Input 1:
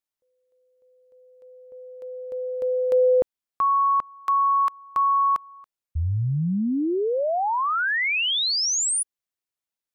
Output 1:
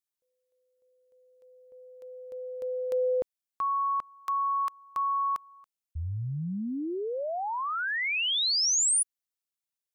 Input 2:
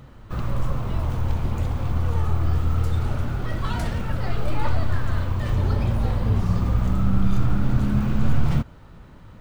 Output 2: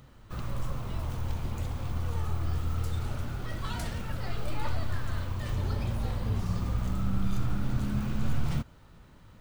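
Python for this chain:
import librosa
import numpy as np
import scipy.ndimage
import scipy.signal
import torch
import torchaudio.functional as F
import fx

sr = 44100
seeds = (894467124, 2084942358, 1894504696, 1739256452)

y = fx.high_shelf(x, sr, hz=3000.0, db=9.0)
y = y * 10.0 ** (-9.0 / 20.0)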